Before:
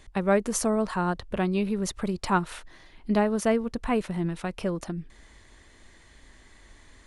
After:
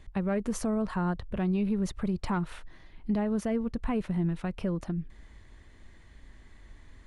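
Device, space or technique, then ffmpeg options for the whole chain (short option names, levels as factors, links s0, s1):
soft clipper into limiter: -af "bass=f=250:g=8,treble=f=4000:g=-7,asoftclip=type=tanh:threshold=0.335,alimiter=limit=0.15:level=0:latency=1:release=61,volume=0.596"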